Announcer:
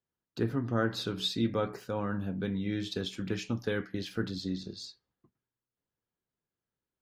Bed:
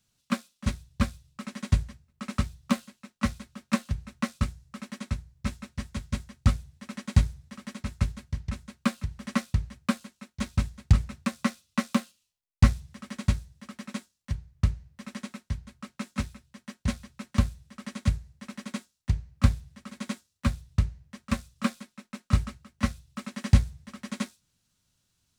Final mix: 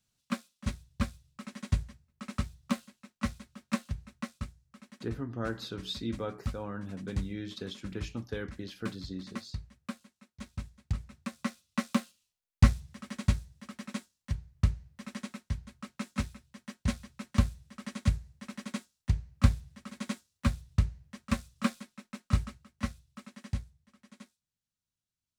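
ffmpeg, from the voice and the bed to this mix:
-filter_complex "[0:a]adelay=4650,volume=-5.5dB[a];[1:a]volume=5.5dB,afade=t=out:st=3.87:d=0.65:silence=0.421697,afade=t=in:st=11.03:d=1.12:silence=0.281838,afade=t=out:st=21.91:d=1.81:silence=0.133352[b];[a][b]amix=inputs=2:normalize=0"

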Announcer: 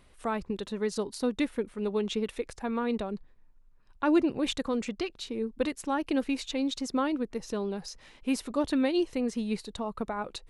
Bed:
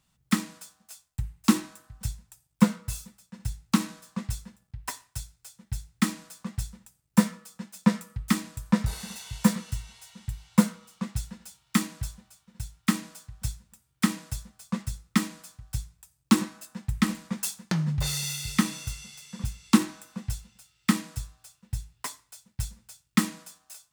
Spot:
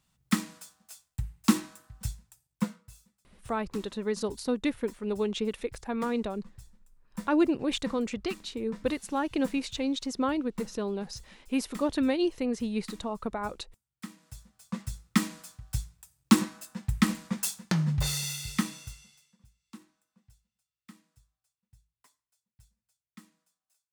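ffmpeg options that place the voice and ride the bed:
-filter_complex "[0:a]adelay=3250,volume=0dB[a];[1:a]volume=16.5dB,afade=t=out:st=2.03:d=0.84:silence=0.149624,afade=t=in:st=14.18:d=1.13:silence=0.11885,afade=t=out:st=17.95:d=1.42:silence=0.0354813[b];[a][b]amix=inputs=2:normalize=0"

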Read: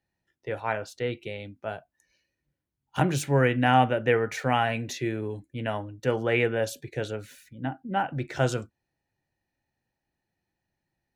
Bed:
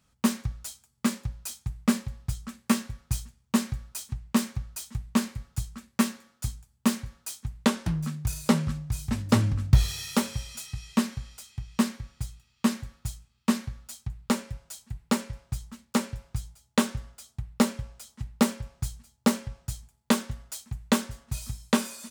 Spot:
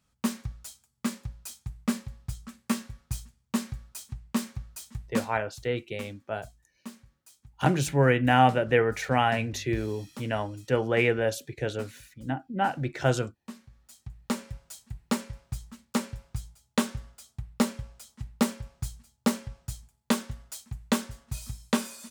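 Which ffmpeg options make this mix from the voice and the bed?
-filter_complex "[0:a]adelay=4650,volume=0.5dB[a];[1:a]volume=11.5dB,afade=t=out:st=5.16:d=0.24:silence=0.199526,afade=t=in:st=13.67:d=0.84:silence=0.158489[b];[a][b]amix=inputs=2:normalize=0"

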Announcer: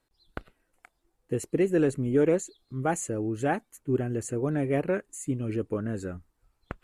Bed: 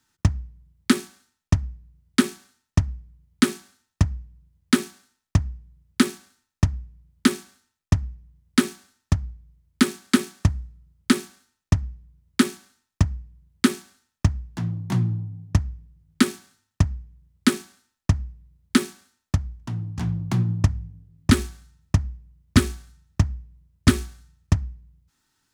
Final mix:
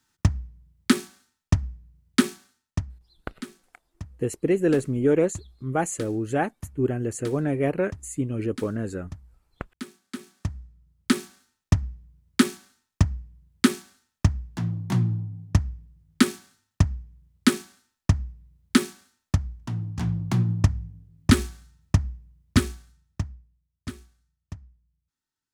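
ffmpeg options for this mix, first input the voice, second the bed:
-filter_complex "[0:a]adelay=2900,volume=2.5dB[a];[1:a]volume=17dB,afade=t=out:st=2.26:d=0.83:silence=0.133352,afade=t=in:st=10.13:d=1.38:silence=0.125893,afade=t=out:st=22.12:d=1.5:silence=0.11885[b];[a][b]amix=inputs=2:normalize=0"

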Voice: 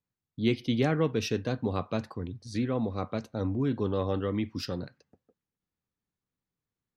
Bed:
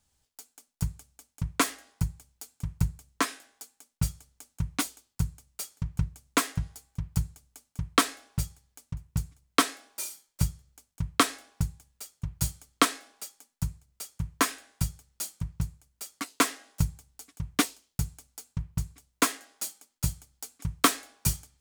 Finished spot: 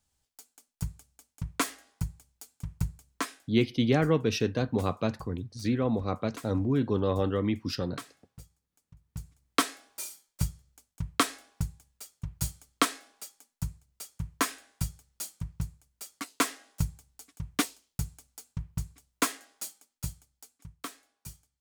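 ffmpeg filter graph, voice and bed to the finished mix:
-filter_complex "[0:a]adelay=3100,volume=2dB[a];[1:a]volume=12.5dB,afade=t=out:st=3.11:d=0.53:silence=0.16788,afade=t=in:st=9:d=0.52:silence=0.149624,afade=t=out:st=19.45:d=1.34:silence=0.16788[b];[a][b]amix=inputs=2:normalize=0"

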